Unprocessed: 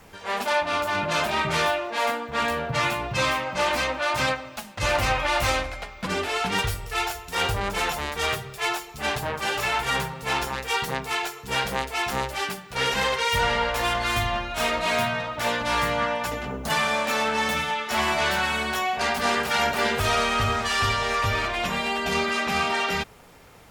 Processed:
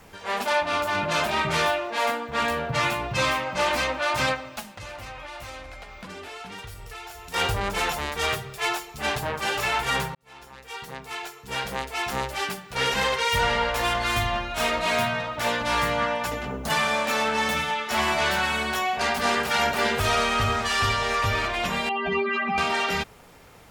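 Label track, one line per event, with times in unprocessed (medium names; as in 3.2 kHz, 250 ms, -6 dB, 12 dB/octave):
4.670000	7.340000	compression 5:1, threshold -37 dBFS
10.150000	12.490000	fade in
21.890000	22.580000	spectral contrast enhancement exponent 2.4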